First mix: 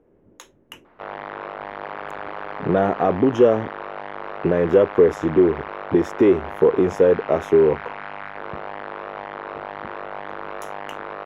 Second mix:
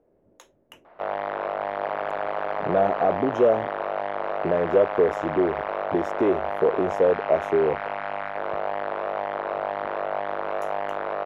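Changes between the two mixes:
speech −8.5 dB
master: add parametric band 640 Hz +9.5 dB 0.64 octaves

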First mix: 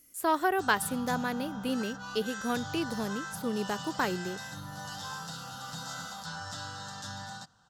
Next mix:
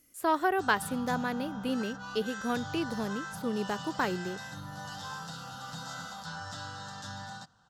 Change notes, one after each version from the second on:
master: add high-shelf EQ 5,800 Hz −7 dB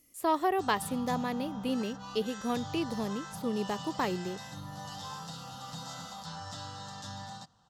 master: add parametric band 1,500 Hz −13 dB 0.22 octaves

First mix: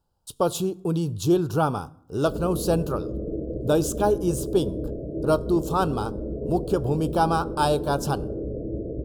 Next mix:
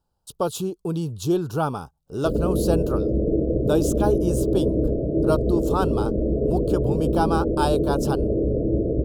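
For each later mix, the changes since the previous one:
background +9.0 dB
reverb: off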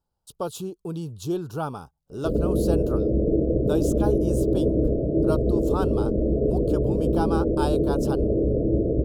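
speech −5.5 dB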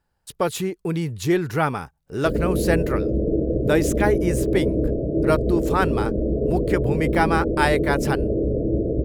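speech +7.0 dB
master: remove Butterworth band-reject 2,000 Hz, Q 1.1

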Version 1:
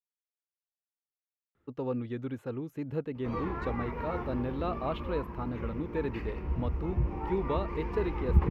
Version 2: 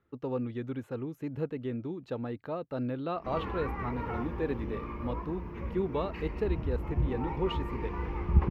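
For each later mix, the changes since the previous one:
speech: entry −1.55 s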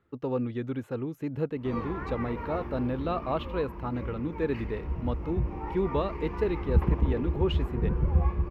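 speech +3.5 dB
background: entry −1.60 s

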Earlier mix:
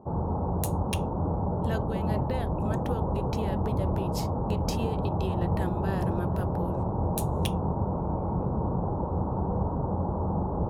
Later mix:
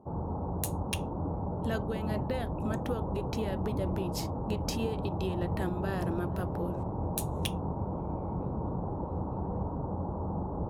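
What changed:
first sound −6.0 dB
master: add parametric band 290 Hz +3.5 dB 0.28 octaves

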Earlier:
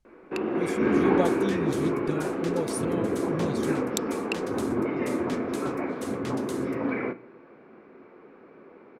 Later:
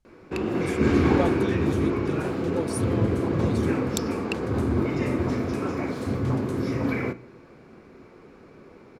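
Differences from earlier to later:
first sound: remove three-way crossover with the lows and the highs turned down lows −19 dB, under 200 Hz, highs −24 dB, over 2,800 Hz
second sound −8.0 dB

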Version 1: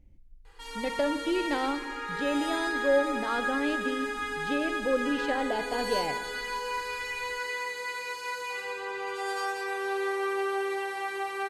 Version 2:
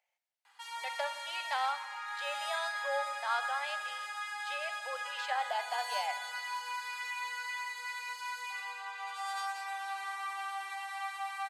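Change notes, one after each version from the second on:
background: send −8.5 dB
master: add Butterworth high-pass 670 Hz 48 dB per octave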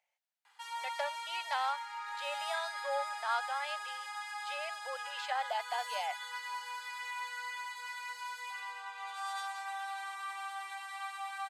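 reverb: off

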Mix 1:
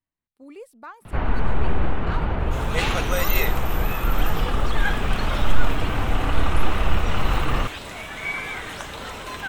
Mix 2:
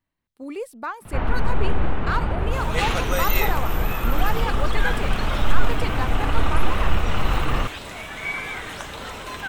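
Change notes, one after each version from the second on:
speech +9.5 dB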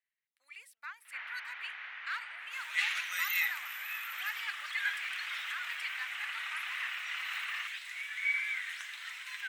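master: add four-pole ladder high-pass 1,700 Hz, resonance 55%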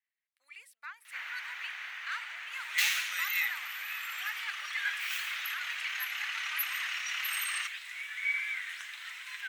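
first sound: remove high-frequency loss of the air 280 metres

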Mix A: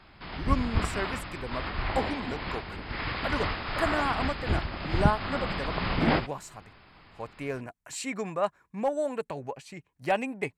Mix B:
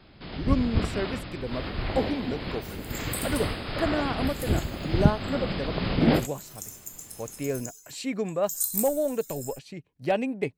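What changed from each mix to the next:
second sound: unmuted
reverb: on, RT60 0.75 s
master: add octave-band graphic EQ 125/250/500/1,000/2,000/4,000/8,000 Hz +4/+4/+5/−6/−3/+4/−5 dB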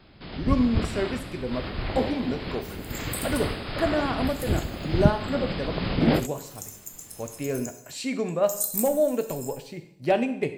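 speech: send on

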